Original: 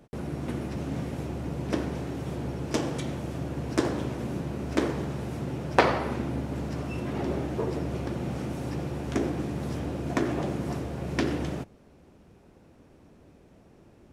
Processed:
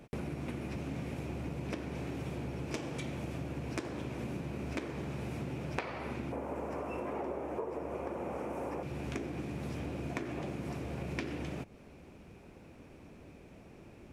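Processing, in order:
0:06.32–0:08.83: graphic EQ with 10 bands 125 Hz −10 dB, 500 Hz +9 dB, 1,000 Hz +10 dB, 4,000 Hz −10 dB
downward compressor 8 to 1, threshold −37 dBFS, peak gain reduction 23 dB
parametric band 2,400 Hz +8.5 dB 0.38 octaves
level +1.5 dB

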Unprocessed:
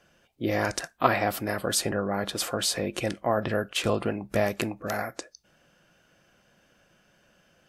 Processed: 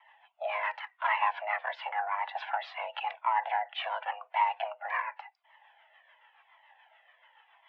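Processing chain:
in parallel at +2.5 dB: downward compressor, threshold −37 dBFS, peak gain reduction 20.5 dB
on the sum: soft clipping −14.5 dBFS, distortion −16 dB
rotating-speaker cabinet horn 7 Hz
single-sideband voice off tune +310 Hz 380–2,700 Hz
flanger whose copies keep moving one way falling 0.91 Hz
level +3.5 dB

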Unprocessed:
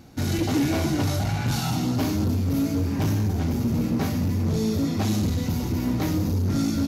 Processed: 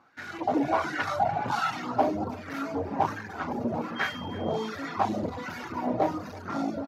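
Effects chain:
reverb reduction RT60 1 s
automatic gain control gain up to 10.5 dB
0:03.95–0:04.67: steady tone 3,200 Hz −29 dBFS
LFO wah 1.3 Hz 620–1,700 Hz, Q 3.7
far-end echo of a speakerphone 330 ms, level −19 dB
level +4.5 dB

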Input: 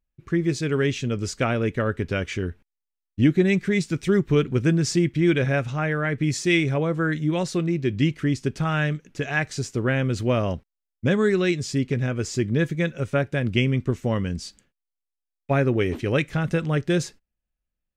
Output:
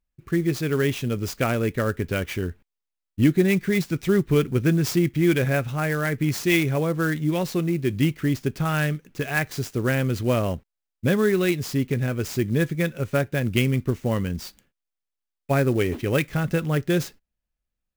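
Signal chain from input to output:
converter with an unsteady clock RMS 0.023 ms

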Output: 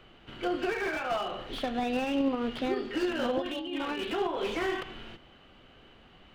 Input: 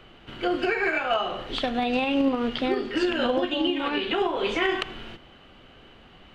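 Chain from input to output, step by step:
0:03.42–0:04.04: compressor whose output falls as the input rises −29 dBFS, ratio −1
slew-rate limiting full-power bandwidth 77 Hz
level −5 dB

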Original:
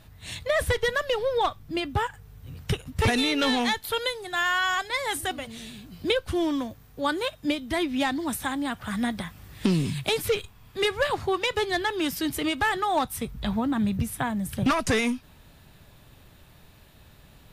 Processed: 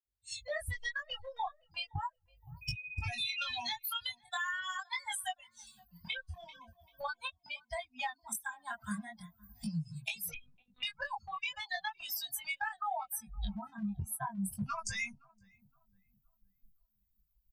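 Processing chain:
spectral dynamics exaggerated over time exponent 3
camcorder AGC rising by 53 dB per second
elliptic band-stop filter 180–700 Hz, stop band 50 dB
downward compressor, threshold −37 dBFS, peak gain reduction 13 dB
0:02.61–0:03.58: steady tone 2,500 Hz −45 dBFS
0:05.88–0:06.59: delay throw 390 ms, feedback 20%, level −16.5 dB
chorus effect 0.4 Hz, delay 18 ms, depth 6.2 ms
feedback echo with a low-pass in the loop 516 ms, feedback 43%, low-pass 920 Hz, level −23 dB
0:10.34–0:10.83: one-pitch LPC vocoder at 8 kHz 250 Hz
level +5.5 dB
Opus 256 kbit/s 48,000 Hz

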